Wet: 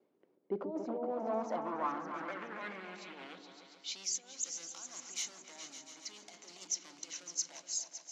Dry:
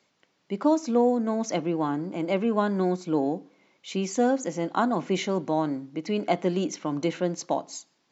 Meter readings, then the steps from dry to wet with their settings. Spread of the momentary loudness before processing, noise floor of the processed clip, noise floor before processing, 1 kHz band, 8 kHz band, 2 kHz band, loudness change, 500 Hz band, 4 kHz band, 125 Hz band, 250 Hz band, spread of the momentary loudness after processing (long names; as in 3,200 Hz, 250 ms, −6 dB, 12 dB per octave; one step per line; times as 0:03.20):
8 LU, −72 dBFS, −71 dBFS, −12.5 dB, can't be measured, −10.0 dB, −13.0 dB, −15.5 dB, −4.5 dB, −25.0 dB, −20.0 dB, 12 LU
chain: compressor whose output falls as the input rises −26 dBFS, ratio −0.5
noise gate with hold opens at −58 dBFS
hard clipping −27 dBFS, distortion −9 dB
echo whose low-pass opens from repeat to repeat 140 ms, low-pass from 400 Hz, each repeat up 2 octaves, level −3 dB
band-pass filter sweep 380 Hz → 6,200 Hz, 0:00.38–0:04.26
level +2 dB